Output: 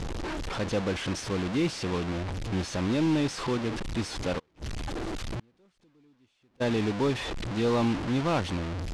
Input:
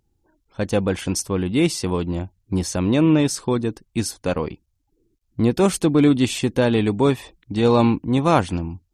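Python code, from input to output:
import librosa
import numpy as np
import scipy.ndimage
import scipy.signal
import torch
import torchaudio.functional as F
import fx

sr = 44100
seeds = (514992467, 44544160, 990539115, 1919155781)

y = fx.delta_mod(x, sr, bps=64000, step_db=-19.5)
y = scipy.signal.sosfilt(scipy.signal.butter(2, 4600.0, 'lowpass', fs=sr, output='sos'), y)
y = 10.0 ** (-10.5 / 20.0) * np.tanh(y / 10.0 ** (-10.5 / 20.0))
y = fx.gate_flip(y, sr, shuts_db=-21.0, range_db=-37, at=(4.38, 6.6), fade=0.02)
y = np.clip(y, -10.0 ** (-12.5 / 20.0), 10.0 ** (-12.5 / 20.0))
y = y * 10.0 ** (-7.0 / 20.0)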